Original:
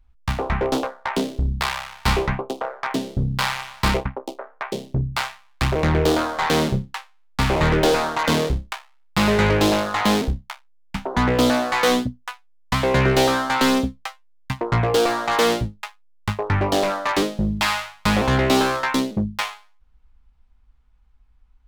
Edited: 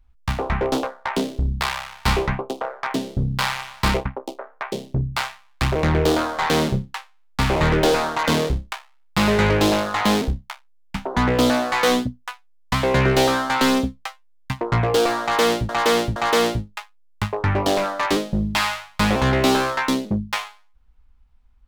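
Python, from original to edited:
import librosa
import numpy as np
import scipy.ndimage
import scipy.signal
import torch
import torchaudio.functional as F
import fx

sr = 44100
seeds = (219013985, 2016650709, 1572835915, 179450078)

y = fx.edit(x, sr, fx.repeat(start_s=15.22, length_s=0.47, count=3), tone=tone)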